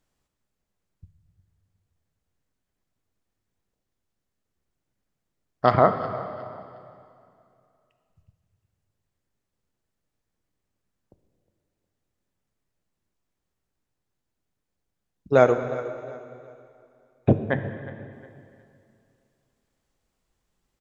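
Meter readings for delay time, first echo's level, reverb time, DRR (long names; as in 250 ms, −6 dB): 361 ms, −17.5 dB, 2.4 s, 7.5 dB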